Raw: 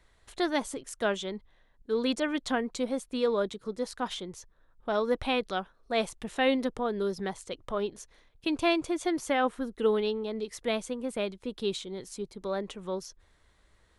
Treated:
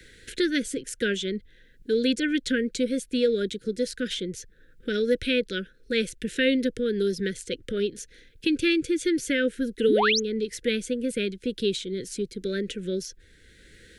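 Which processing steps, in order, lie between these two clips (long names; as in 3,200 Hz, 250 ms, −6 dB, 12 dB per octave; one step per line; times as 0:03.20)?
Chebyshev band-stop filter 510–1,500 Hz, order 4
sound drawn into the spectrogram rise, 0:09.88–0:10.20, 200–6,900 Hz −27 dBFS
multiband upward and downward compressor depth 40%
level +6 dB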